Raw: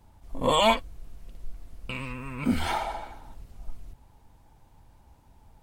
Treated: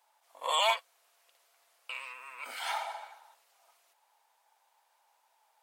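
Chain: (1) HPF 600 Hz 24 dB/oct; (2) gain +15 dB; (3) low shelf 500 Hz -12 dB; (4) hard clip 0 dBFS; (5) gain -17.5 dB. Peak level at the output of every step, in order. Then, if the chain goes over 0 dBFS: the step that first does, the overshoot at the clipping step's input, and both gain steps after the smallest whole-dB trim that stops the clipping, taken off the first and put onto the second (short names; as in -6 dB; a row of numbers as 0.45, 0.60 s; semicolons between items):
-9.5, +5.5, +3.5, 0.0, -17.5 dBFS; step 2, 3.5 dB; step 2 +11 dB, step 5 -13.5 dB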